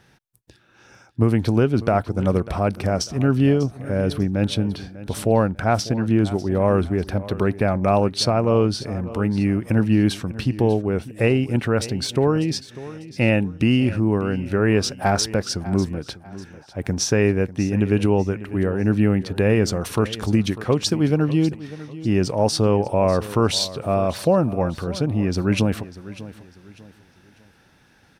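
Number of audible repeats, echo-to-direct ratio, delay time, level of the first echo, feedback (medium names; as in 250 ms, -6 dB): 2, -16.0 dB, 596 ms, -16.5 dB, 34%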